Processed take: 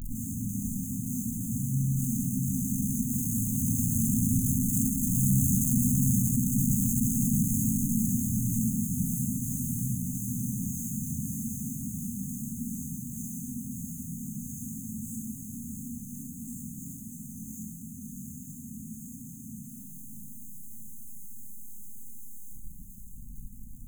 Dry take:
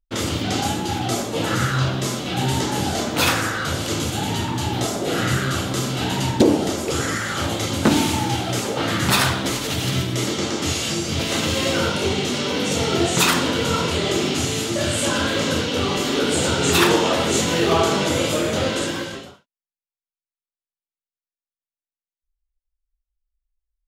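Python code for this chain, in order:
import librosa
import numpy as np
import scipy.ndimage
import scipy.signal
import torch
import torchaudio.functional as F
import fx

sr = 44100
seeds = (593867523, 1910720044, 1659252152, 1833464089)

p1 = np.sign(x) * np.sqrt(np.mean(np.square(x)))
p2 = fx.doppler_pass(p1, sr, speed_mps=9, closest_m=2.4, pass_at_s=5.38)
p3 = fx.peak_eq(p2, sr, hz=310.0, db=13.5, octaves=2.3)
p4 = fx.echo_feedback(p3, sr, ms=637, feedback_pct=43, wet_db=-6)
p5 = fx.rev_freeverb(p4, sr, rt60_s=0.98, hf_ratio=0.8, predelay_ms=0, drr_db=-1.5)
p6 = fx.over_compress(p5, sr, threshold_db=-23.0, ratio=-1.0)
p7 = p5 + (p6 * librosa.db_to_amplitude(2.0))
p8 = np.clip(p7, -10.0 ** (-19.0 / 20.0), 10.0 ** (-19.0 / 20.0))
p9 = fx.brickwall_bandstop(p8, sr, low_hz=260.0, high_hz=6200.0)
y = fx.high_shelf(p9, sr, hz=11000.0, db=5.0)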